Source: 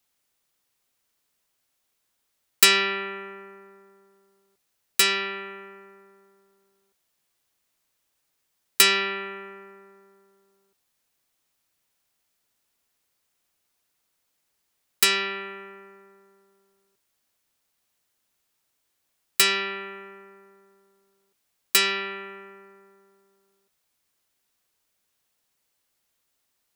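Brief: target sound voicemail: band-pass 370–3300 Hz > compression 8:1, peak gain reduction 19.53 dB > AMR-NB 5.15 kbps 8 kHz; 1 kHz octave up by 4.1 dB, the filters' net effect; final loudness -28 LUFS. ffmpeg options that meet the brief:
-af "highpass=370,lowpass=3300,equalizer=f=1000:t=o:g=6.5,acompressor=threshold=0.0178:ratio=8,volume=4.47" -ar 8000 -c:a libopencore_amrnb -b:a 5150

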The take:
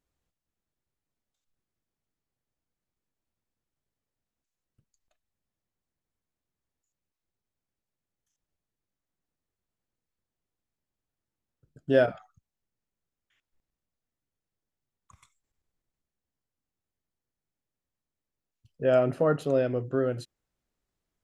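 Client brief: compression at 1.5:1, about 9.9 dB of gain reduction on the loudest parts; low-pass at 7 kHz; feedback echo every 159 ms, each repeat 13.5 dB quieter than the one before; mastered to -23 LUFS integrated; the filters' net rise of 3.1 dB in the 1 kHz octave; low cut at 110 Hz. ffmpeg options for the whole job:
-af "highpass=110,lowpass=7000,equalizer=f=1000:t=o:g=5,acompressor=threshold=0.00631:ratio=1.5,aecho=1:1:159|318:0.211|0.0444,volume=3.55"

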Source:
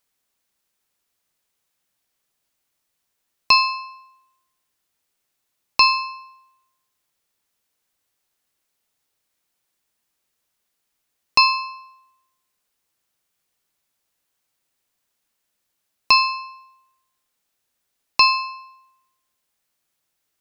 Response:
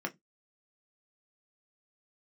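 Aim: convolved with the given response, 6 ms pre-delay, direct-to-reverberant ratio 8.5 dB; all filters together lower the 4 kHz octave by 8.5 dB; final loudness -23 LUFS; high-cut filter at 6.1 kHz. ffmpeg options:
-filter_complex "[0:a]lowpass=6100,equalizer=f=4000:t=o:g=-9,asplit=2[s0][s1];[1:a]atrim=start_sample=2205,adelay=6[s2];[s1][s2]afir=irnorm=-1:irlink=0,volume=0.251[s3];[s0][s3]amix=inputs=2:normalize=0,volume=0.708"

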